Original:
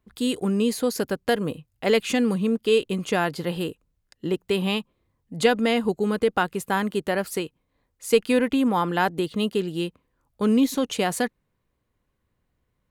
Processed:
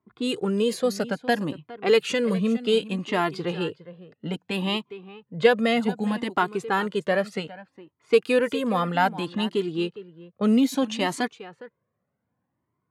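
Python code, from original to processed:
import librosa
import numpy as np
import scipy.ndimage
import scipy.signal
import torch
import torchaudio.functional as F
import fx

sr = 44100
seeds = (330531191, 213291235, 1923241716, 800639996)

y = scipy.signal.sosfilt(scipy.signal.butter(4, 120.0, 'highpass', fs=sr, output='sos'), x)
y = fx.high_shelf(y, sr, hz=8300.0, db=-7.5)
y = y + 10.0 ** (-16.5 / 20.0) * np.pad(y, (int(410 * sr / 1000.0), 0))[:len(y)]
y = fx.env_lowpass(y, sr, base_hz=1400.0, full_db=-18.5)
y = fx.comb_cascade(y, sr, direction='rising', hz=0.63)
y = y * 10.0 ** (5.0 / 20.0)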